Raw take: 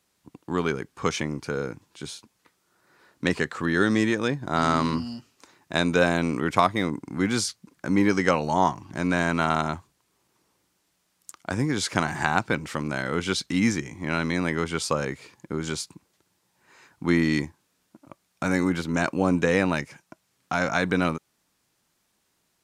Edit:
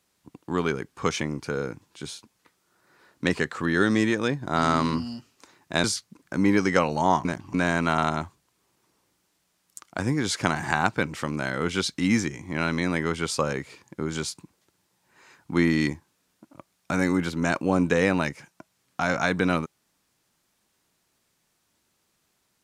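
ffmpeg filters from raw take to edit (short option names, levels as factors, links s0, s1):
-filter_complex "[0:a]asplit=4[s0][s1][s2][s3];[s0]atrim=end=5.842[s4];[s1]atrim=start=7.358:end=8.772[s5];[s2]atrim=start=8.768:end=9.062,asetpts=PTS-STARTPTS,areverse[s6];[s3]atrim=start=9.058[s7];[s4][s5]acrossfade=d=0.004:c1=hsin:c2=hsin[s8];[s8][s6]acrossfade=d=0.004:c1=hsin:c2=hsin[s9];[s9][s7]acrossfade=d=0.004:c1=hsin:c2=hsin"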